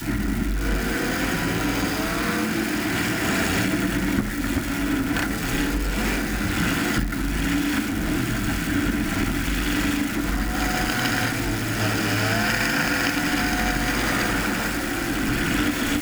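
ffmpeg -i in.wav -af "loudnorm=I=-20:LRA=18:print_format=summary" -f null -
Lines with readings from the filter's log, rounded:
Input Integrated:    -23.3 LUFS
Input True Peak:      -9.1 dBTP
Input LRA:             1.8 LU
Input Threshold:     -33.3 LUFS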